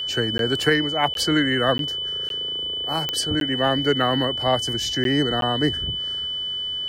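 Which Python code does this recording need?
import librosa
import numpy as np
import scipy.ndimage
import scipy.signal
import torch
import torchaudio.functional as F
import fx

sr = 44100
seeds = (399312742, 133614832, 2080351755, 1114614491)

y = fx.fix_declick_ar(x, sr, threshold=10.0)
y = fx.notch(y, sr, hz=3000.0, q=30.0)
y = fx.fix_interpolate(y, sr, at_s=(0.38, 1.14, 1.78, 2.29, 3.4, 5.04, 5.41), length_ms=12.0)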